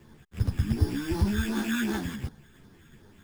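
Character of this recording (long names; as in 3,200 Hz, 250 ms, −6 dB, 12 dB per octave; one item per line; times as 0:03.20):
phaser sweep stages 12, 2.7 Hz, lowest notch 680–2,900 Hz
aliases and images of a low sample rate 5,100 Hz, jitter 0%
a shimmering, thickened sound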